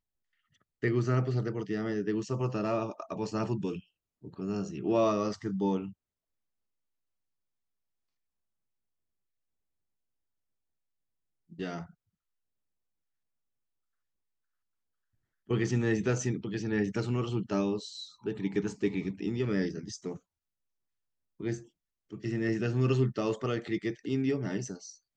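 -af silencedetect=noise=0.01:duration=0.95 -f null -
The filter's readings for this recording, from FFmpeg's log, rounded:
silence_start: 5.90
silence_end: 11.53 | silence_duration: 5.63
silence_start: 11.84
silence_end: 15.50 | silence_duration: 3.66
silence_start: 20.17
silence_end: 21.41 | silence_duration: 1.24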